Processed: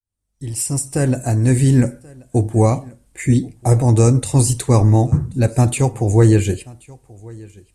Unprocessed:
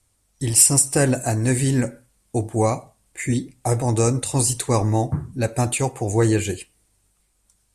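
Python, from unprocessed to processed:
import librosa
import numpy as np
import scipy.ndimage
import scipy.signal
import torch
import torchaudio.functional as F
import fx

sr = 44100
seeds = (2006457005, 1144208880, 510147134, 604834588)

p1 = fx.fade_in_head(x, sr, length_s=1.82)
p2 = fx.low_shelf(p1, sr, hz=340.0, db=10.0)
y = p2 + fx.echo_single(p2, sr, ms=1082, db=-24.0, dry=0)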